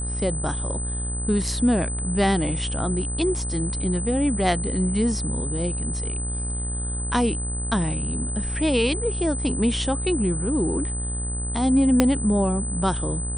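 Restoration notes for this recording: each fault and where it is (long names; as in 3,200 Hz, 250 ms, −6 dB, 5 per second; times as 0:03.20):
mains buzz 60 Hz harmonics 32 −29 dBFS
whistle 8,100 Hz −30 dBFS
0:12.00: click −3 dBFS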